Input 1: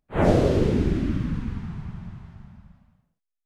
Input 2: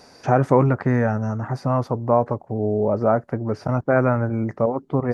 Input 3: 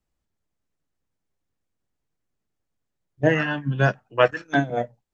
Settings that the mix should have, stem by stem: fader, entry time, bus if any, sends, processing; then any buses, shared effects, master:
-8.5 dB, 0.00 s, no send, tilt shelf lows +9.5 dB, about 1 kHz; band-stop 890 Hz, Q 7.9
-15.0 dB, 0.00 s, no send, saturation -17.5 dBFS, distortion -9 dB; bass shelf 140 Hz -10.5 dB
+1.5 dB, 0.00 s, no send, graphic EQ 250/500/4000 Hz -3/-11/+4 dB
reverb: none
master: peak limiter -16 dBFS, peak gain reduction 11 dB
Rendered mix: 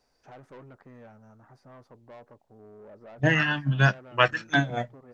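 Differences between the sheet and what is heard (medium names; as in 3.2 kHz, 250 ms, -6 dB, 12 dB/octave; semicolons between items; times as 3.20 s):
stem 1: muted; stem 2 -15.0 dB -> -23.5 dB; master: missing peak limiter -16 dBFS, peak gain reduction 11 dB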